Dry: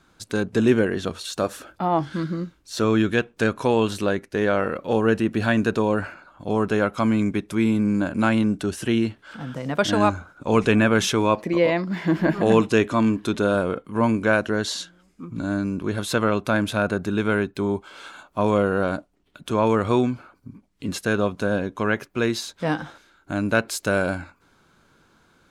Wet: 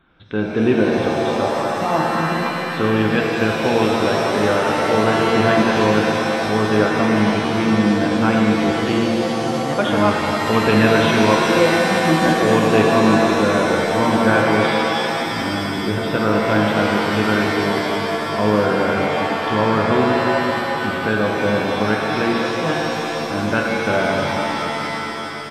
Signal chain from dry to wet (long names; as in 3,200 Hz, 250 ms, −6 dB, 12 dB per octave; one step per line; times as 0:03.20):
downsampling to 8,000 Hz
reverb with rising layers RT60 3.6 s, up +7 semitones, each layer −2 dB, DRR −0.5 dB